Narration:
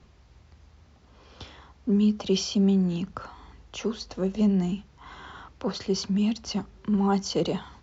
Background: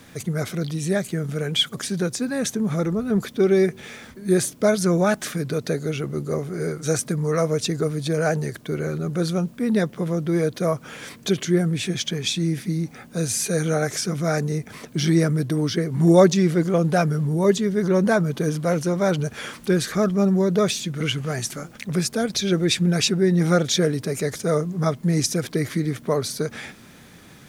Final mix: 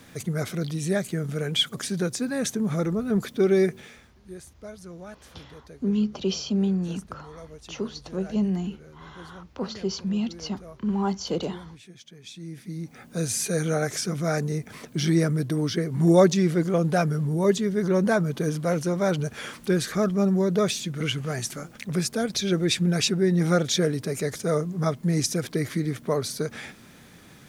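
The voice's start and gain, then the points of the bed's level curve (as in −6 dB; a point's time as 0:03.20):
3.95 s, −2.0 dB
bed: 0:03.75 −2.5 dB
0:04.23 −22.5 dB
0:12.11 −22.5 dB
0:13.10 −3 dB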